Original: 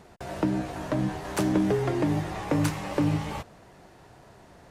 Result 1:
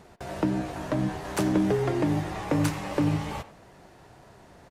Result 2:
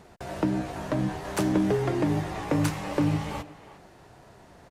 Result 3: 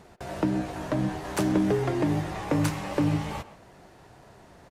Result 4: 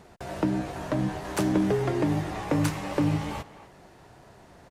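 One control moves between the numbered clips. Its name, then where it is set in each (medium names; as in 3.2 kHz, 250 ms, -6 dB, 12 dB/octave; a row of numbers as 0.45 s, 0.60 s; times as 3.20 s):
speakerphone echo, time: 90 ms, 360 ms, 130 ms, 250 ms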